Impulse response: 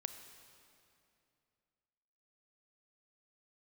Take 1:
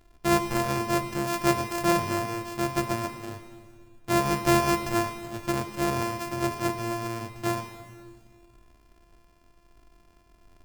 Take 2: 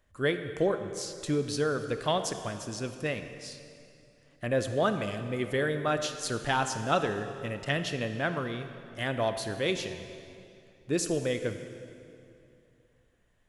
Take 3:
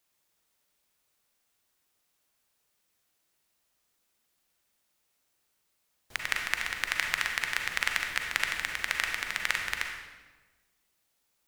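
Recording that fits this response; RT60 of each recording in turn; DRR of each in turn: 2; 1.9 s, 2.6 s, 1.3 s; 7.5 dB, 8.0 dB, 2.0 dB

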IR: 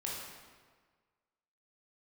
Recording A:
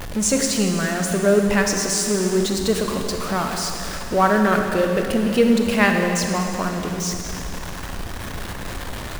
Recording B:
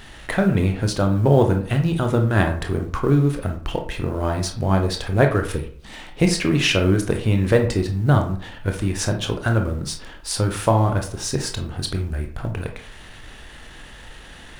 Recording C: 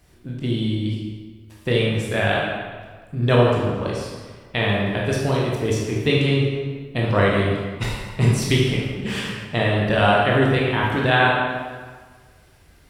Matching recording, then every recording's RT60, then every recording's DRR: C; 2.6 s, 0.50 s, 1.5 s; 3.0 dB, 3.5 dB, -4.5 dB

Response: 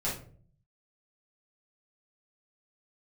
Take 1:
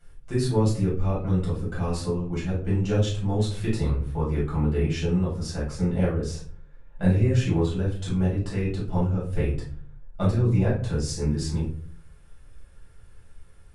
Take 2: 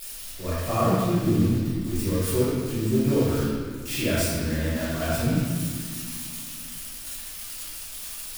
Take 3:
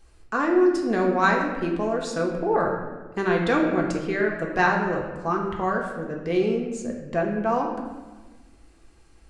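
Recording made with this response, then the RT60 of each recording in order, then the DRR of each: 1; 0.50 s, 1.9 s, 1.3 s; -8.0 dB, -13.0 dB, -0.5 dB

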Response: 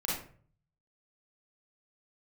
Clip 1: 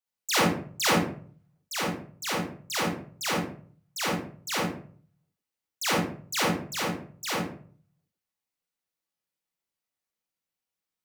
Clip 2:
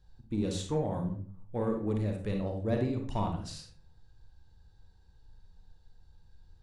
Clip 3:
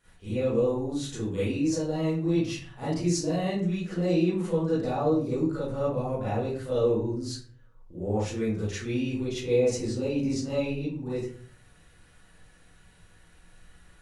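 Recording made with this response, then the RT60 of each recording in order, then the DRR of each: 1; 0.45 s, 0.50 s, 0.45 s; -6.5 dB, 2.0 dB, -12.5 dB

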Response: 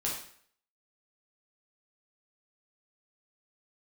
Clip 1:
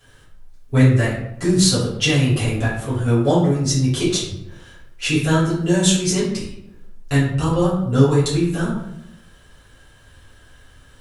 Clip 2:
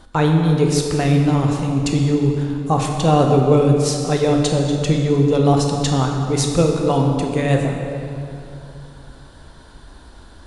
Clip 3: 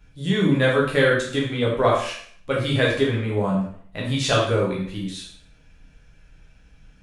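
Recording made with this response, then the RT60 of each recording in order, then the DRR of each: 3; 0.80 s, 2.8 s, 0.60 s; -10.5 dB, 1.0 dB, -4.5 dB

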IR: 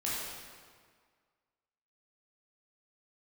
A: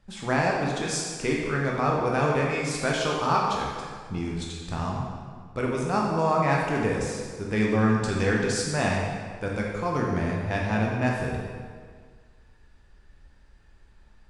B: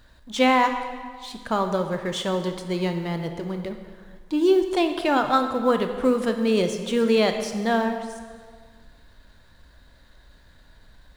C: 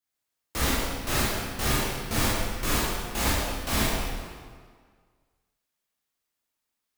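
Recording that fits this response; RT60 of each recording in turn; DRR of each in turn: C; 1.8 s, 1.8 s, 1.8 s; -2.5 dB, 6.0 dB, -8.0 dB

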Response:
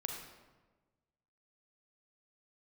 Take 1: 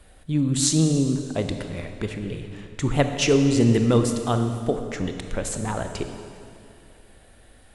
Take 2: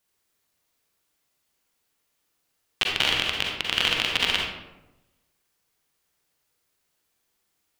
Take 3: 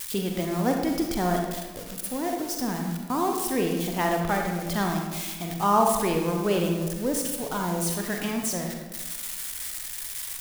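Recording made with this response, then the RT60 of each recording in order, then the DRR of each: 3; 2.5 s, 0.95 s, 1.3 s; 6.0 dB, -1.5 dB, 1.5 dB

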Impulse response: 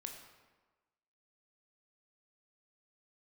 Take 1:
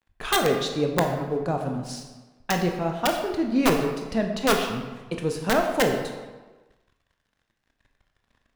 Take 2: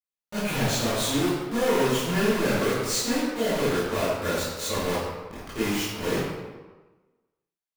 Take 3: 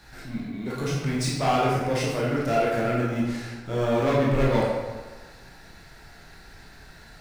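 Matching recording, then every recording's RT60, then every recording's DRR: 1; 1.3 s, 1.3 s, 1.3 s; 3.0 dB, -13.0 dB, -5.5 dB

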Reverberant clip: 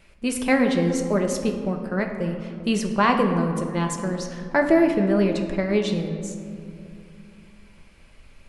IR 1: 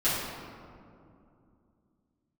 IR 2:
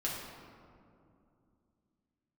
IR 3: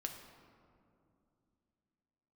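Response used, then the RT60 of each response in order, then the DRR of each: 3; 2.6 s, 2.6 s, 2.6 s; -13.5 dB, -5.5 dB, 3.0 dB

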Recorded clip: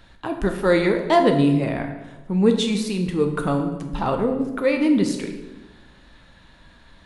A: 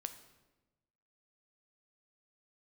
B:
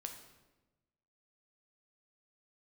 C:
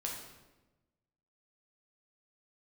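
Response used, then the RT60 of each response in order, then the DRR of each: B; 1.1 s, 1.1 s, 1.1 s; 8.5 dB, 4.0 dB, -1.5 dB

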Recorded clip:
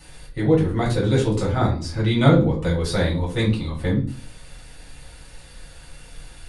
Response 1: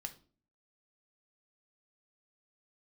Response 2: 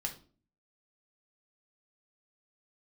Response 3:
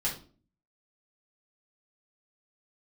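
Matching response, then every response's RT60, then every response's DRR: 3; 0.40 s, 0.40 s, 0.40 s; 6.0 dB, 2.0 dB, -5.5 dB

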